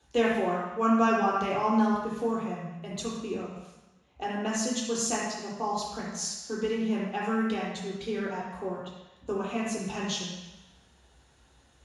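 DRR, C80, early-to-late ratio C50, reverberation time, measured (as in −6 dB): −5.5 dB, 3.0 dB, 0.5 dB, 1.1 s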